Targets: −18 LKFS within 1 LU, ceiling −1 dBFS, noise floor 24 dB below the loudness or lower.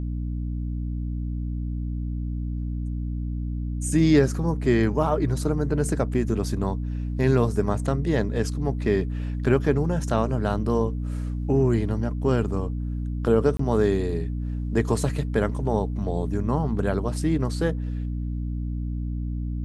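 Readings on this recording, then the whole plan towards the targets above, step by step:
number of dropouts 1; longest dropout 24 ms; mains hum 60 Hz; hum harmonics up to 300 Hz; level of the hum −26 dBFS; integrated loudness −25.5 LKFS; sample peak −6.0 dBFS; target loudness −18.0 LKFS
→ repair the gap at 0:13.57, 24 ms
hum removal 60 Hz, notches 5
level +7.5 dB
brickwall limiter −1 dBFS

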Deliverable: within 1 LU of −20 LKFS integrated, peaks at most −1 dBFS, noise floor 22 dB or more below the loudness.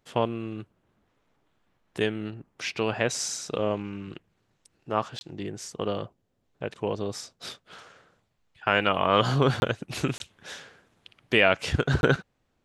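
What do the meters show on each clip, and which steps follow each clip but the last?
number of dropouts 4; longest dropout 21 ms; integrated loudness −27.5 LKFS; sample peak −4.5 dBFS; target loudness −20.0 LKFS
→ repair the gap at 0:05.19/0:09.60/0:10.18/0:12.01, 21 ms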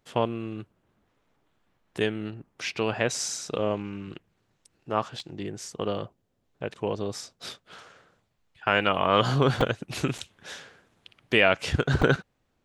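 number of dropouts 0; integrated loudness −27.5 LKFS; sample peak −4.5 dBFS; target loudness −20.0 LKFS
→ level +7.5 dB
brickwall limiter −1 dBFS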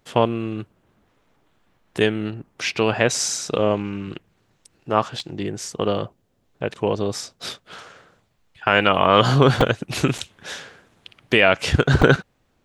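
integrated loudness −20.5 LKFS; sample peak −1.0 dBFS; background noise floor −66 dBFS

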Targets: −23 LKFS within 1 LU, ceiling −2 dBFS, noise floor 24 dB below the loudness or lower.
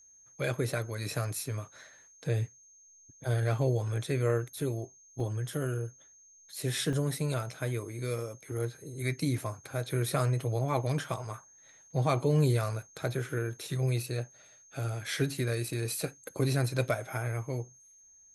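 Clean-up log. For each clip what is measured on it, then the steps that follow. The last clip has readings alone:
number of dropouts 2; longest dropout 2.2 ms; interfering tone 6,400 Hz; level of the tone −56 dBFS; integrated loudness −32.5 LKFS; sample peak −14.0 dBFS; target loudness −23.0 LKFS
→ repair the gap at 0:05.20/0:06.93, 2.2 ms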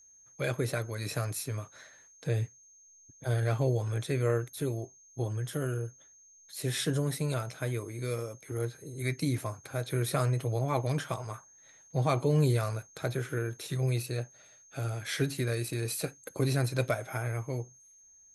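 number of dropouts 0; interfering tone 6,400 Hz; level of the tone −56 dBFS
→ notch filter 6,400 Hz, Q 30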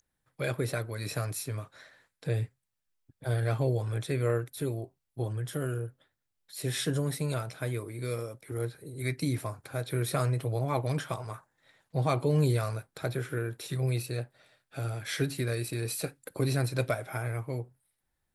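interfering tone none found; integrated loudness −32.5 LKFS; sample peak −14.0 dBFS; target loudness −23.0 LKFS
→ level +9.5 dB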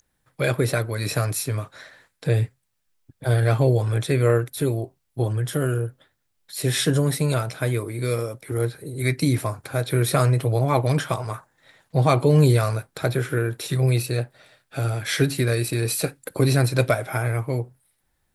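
integrated loudness −23.0 LKFS; sample peak −4.5 dBFS; background noise floor −73 dBFS

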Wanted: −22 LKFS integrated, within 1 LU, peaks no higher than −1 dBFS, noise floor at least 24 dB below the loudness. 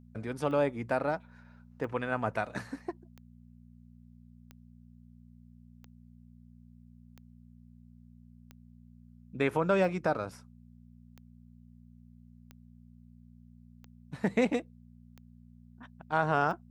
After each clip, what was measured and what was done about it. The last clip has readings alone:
number of clicks 13; mains hum 60 Hz; hum harmonics up to 240 Hz; level of the hum −52 dBFS; integrated loudness −31.5 LKFS; sample peak −13.0 dBFS; target loudness −22.0 LKFS
→ click removal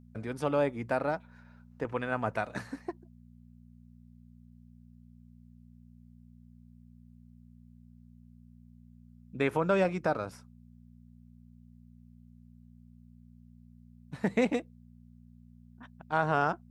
number of clicks 0; mains hum 60 Hz; hum harmonics up to 240 Hz; level of the hum −52 dBFS
→ hum removal 60 Hz, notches 4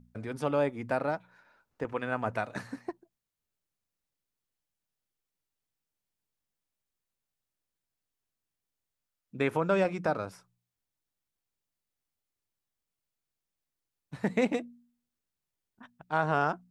mains hum none found; integrated loudness −31.5 LKFS; sample peak −13.0 dBFS; target loudness −22.0 LKFS
→ level +9.5 dB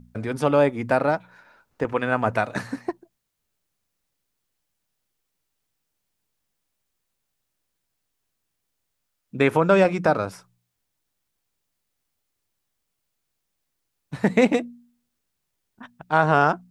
integrated loudness −22.0 LKFS; sample peak −3.5 dBFS; background noise floor −78 dBFS

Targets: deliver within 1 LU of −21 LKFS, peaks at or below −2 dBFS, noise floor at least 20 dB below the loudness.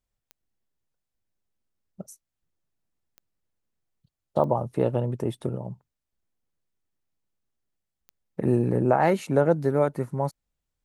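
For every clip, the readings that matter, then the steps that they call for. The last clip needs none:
number of clicks 4; integrated loudness −25.0 LKFS; sample peak −6.5 dBFS; target loudness −21.0 LKFS
→ click removal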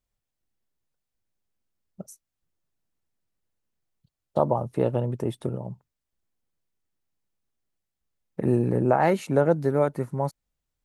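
number of clicks 0; integrated loudness −25.0 LKFS; sample peak −6.5 dBFS; target loudness −21.0 LKFS
→ level +4 dB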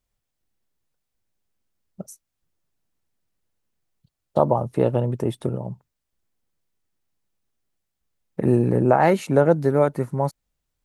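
integrated loudness −21.5 LKFS; sample peak −2.5 dBFS; background noise floor −80 dBFS

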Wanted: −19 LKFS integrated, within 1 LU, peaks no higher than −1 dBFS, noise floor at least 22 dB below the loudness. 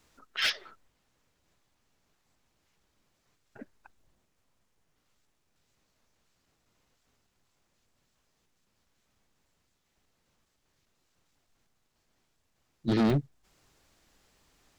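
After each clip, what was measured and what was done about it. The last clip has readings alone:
share of clipped samples 0.3%; peaks flattened at −21.0 dBFS; number of dropouts 1; longest dropout 1.4 ms; integrated loudness −29.5 LKFS; sample peak −21.0 dBFS; target loudness −19.0 LKFS
→ clipped peaks rebuilt −21 dBFS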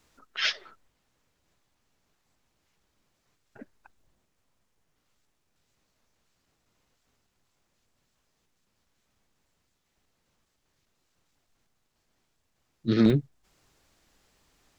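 share of clipped samples 0.0%; number of dropouts 1; longest dropout 1.4 ms
→ repair the gap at 0:13.10, 1.4 ms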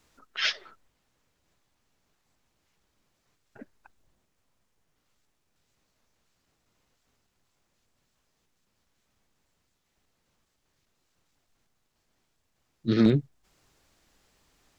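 number of dropouts 0; integrated loudness −26.5 LKFS; sample peak −12.0 dBFS; target loudness −19.0 LKFS
→ level +7.5 dB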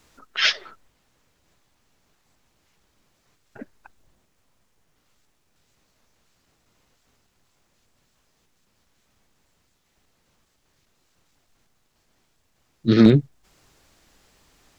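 integrated loudness −19.0 LKFS; sample peak −4.5 dBFS; background noise floor −68 dBFS

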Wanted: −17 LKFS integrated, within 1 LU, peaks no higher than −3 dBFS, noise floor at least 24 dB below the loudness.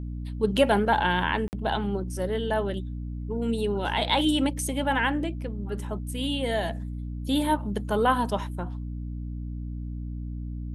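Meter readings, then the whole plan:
number of dropouts 1; longest dropout 49 ms; mains hum 60 Hz; hum harmonics up to 300 Hz; level of the hum −31 dBFS; integrated loudness −27.5 LKFS; sample peak −9.0 dBFS; target loudness −17.0 LKFS
→ repair the gap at 0:01.48, 49 ms
mains-hum notches 60/120/180/240/300 Hz
level +10.5 dB
brickwall limiter −3 dBFS

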